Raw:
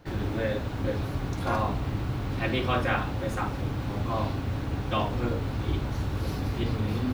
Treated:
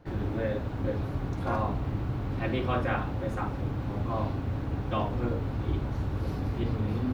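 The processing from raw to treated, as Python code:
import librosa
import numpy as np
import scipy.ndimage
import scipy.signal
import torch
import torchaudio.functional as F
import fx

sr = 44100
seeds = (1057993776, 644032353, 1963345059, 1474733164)

y = fx.high_shelf(x, sr, hz=2200.0, db=-10.5)
y = F.gain(torch.from_numpy(y), -1.0).numpy()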